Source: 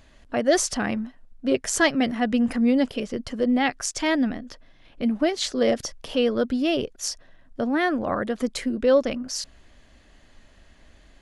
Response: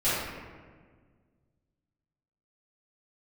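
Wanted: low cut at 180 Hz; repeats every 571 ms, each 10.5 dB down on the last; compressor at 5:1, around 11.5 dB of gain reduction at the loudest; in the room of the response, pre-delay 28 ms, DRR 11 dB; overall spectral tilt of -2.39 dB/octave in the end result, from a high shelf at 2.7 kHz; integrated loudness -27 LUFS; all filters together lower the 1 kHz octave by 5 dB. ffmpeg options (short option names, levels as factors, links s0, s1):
-filter_complex "[0:a]highpass=180,equalizer=f=1000:t=o:g=-8.5,highshelf=f=2700:g=5,acompressor=threshold=0.0355:ratio=5,aecho=1:1:571|1142|1713:0.299|0.0896|0.0269,asplit=2[s0][s1];[1:a]atrim=start_sample=2205,adelay=28[s2];[s1][s2]afir=irnorm=-1:irlink=0,volume=0.0631[s3];[s0][s3]amix=inputs=2:normalize=0,volume=1.78"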